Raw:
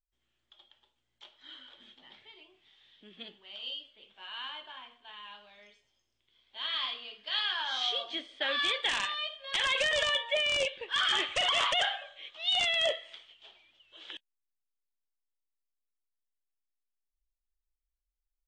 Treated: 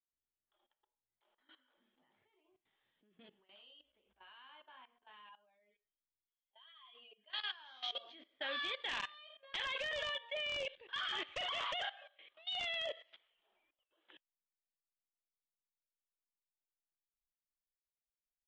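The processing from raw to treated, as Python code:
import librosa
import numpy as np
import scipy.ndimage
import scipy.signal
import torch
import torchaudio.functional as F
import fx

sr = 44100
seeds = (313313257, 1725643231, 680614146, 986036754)

y = fx.spec_expand(x, sr, power=1.7, at=(5.29, 7.3))
y = fx.air_absorb(y, sr, metres=110.0)
y = fx.level_steps(y, sr, step_db=17)
y = fx.peak_eq(y, sr, hz=60.0, db=12.0, octaves=0.37, at=(3.66, 4.37))
y = fx.noise_reduce_blind(y, sr, reduce_db=11)
y = fx.env_lowpass(y, sr, base_hz=1500.0, full_db=-34.5)
y = F.gain(torch.from_numpy(y), -5.5).numpy()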